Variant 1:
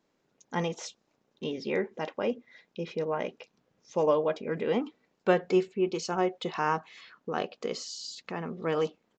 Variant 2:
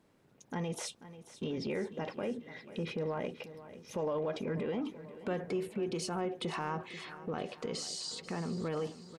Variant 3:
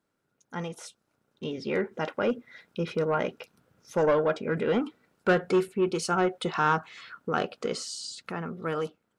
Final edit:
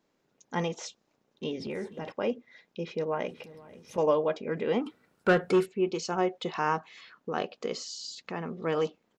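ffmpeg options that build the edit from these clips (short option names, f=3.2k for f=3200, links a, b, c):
-filter_complex "[1:a]asplit=2[a][b];[0:a]asplit=4[c][d][e][f];[c]atrim=end=1.602[g];[a]atrim=start=1.598:end=2.122[h];[d]atrim=start=2.118:end=3.282[i];[b]atrim=start=3.278:end=3.982[j];[e]atrim=start=3.978:end=4.862[k];[2:a]atrim=start=4.858:end=5.662[l];[f]atrim=start=5.658[m];[g][h]acrossfade=d=0.004:c1=hsin:c2=hsin[n];[n][i]acrossfade=d=0.004:c1=hsin:c2=hsin[o];[o][j]acrossfade=d=0.004:c1=hsin:c2=hsin[p];[p][k]acrossfade=d=0.004:c1=hsin:c2=hsin[q];[q][l]acrossfade=d=0.004:c1=hsin:c2=hsin[r];[r][m]acrossfade=d=0.004:c1=hsin:c2=hsin"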